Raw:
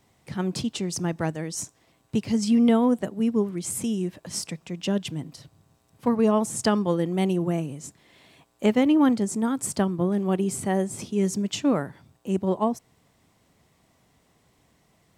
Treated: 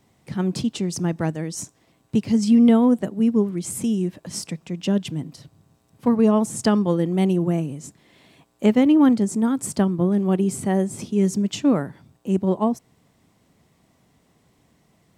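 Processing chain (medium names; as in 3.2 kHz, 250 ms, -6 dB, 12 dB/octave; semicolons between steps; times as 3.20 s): peaking EQ 210 Hz +5 dB 2 oct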